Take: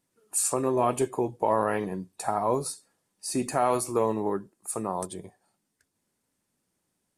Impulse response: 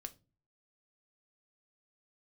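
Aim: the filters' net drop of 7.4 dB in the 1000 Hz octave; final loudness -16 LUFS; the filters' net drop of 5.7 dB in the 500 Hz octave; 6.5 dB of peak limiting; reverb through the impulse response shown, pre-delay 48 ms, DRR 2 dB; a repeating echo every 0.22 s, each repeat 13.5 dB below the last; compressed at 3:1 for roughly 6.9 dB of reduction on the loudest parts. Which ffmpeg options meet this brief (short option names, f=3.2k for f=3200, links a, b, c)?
-filter_complex "[0:a]equalizer=f=500:t=o:g=-5.5,equalizer=f=1k:t=o:g=-7.5,acompressor=threshold=-33dB:ratio=3,alimiter=level_in=2.5dB:limit=-24dB:level=0:latency=1,volume=-2.5dB,aecho=1:1:220|440:0.211|0.0444,asplit=2[a][b];[1:a]atrim=start_sample=2205,adelay=48[c];[b][c]afir=irnorm=-1:irlink=0,volume=2.5dB[d];[a][d]amix=inputs=2:normalize=0,volume=20dB"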